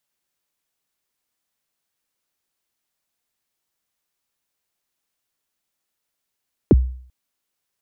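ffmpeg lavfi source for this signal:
-f lavfi -i "aevalsrc='0.531*pow(10,-3*t/0.54)*sin(2*PI*(470*0.032/log(63/470)*(exp(log(63/470)*min(t,0.032)/0.032)-1)+63*max(t-0.032,0)))':d=0.39:s=44100"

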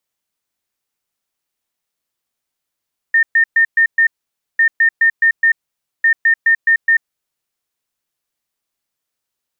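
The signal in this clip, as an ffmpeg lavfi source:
-f lavfi -i "aevalsrc='0.398*sin(2*PI*1820*t)*clip(min(mod(mod(t,1.45),0.21),0.09-mod(mod(t,1.45),0.21))/0.005,0,1)*lt(mod(t,1.45),1.05)':d=4.35:s=44100"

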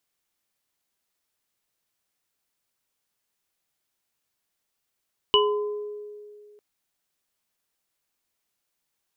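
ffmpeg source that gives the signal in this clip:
-f lavfi -i "aevalsrc='0.126*pow(10,-3*t/2.31)*sin(2*PI*417*t)+0.112*pow(10,-3*t/0.84)*sin(2*PI*1020*t)+0.224*pow(10,-3*t/0.24)*sin(2*PI*2950*t)':d=1.25:s=44100"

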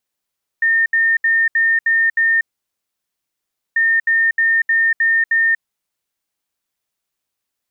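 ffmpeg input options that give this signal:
-f lavfi -i "aevalsrc='0.266*sin(2*PI*1820*t)*clip(min(mod(mod(t,3.14),0.31),0.24-mod(mod(t,3.14),0.31))/0.005,0,1)*lt(mod(t,3.14),1.86)':d=6.28:s=44100"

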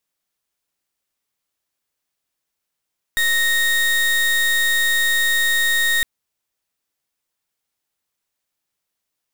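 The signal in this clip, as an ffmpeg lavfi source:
-f lavfi -i "aevalsrc='0.133*(2*lt(mod(1860*t,1),0.32)-1)':d=2.86:s=44100"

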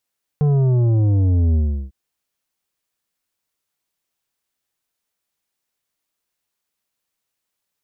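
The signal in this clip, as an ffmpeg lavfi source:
-f lavfi -i "aevalsrc='0.2*clip((1.5-t)/0.36,0,1)*tanh(2.82*sin(2*PI*150*1.5/log(65/150)*(exp(log(65/150)*t/1.5)-1)))/tanh(2.82)':d=1.5:s=44100"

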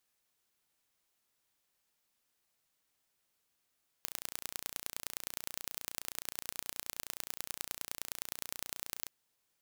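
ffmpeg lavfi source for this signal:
-f lavfi -i "aevalsrc='0.355*eq(mod(n,1495),0)*(0.5+0.5*eq(mod(n,4485),0))':d=5.02:s=44100"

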